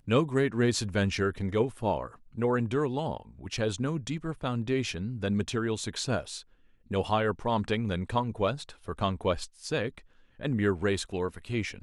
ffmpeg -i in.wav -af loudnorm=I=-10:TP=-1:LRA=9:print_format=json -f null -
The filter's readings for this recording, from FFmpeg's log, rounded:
"input_i" : "-30.5",
"input_tp" : "-11.9",
"input_lra" : "1.5",
"input_thresh" : "-40.8",